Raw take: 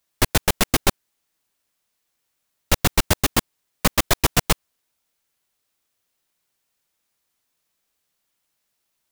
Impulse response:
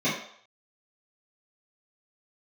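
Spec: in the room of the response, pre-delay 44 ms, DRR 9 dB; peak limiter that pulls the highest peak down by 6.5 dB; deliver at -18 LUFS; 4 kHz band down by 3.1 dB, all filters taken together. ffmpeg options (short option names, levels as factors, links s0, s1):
-filter_complex "[0:a]equalizer=f=4000:t=o:g=-4,alimiter=limit=0.376:level=0:latency=1,asplit=2[s0][s1];[1:a]atrim=start_sample=2205,adelay=44[s2];[s1][s2]afir=irnorm=-1:irlink=0,volume=0.075[s3];[s0][s3]amix=inputs=2:normalize=0,volume=2.24"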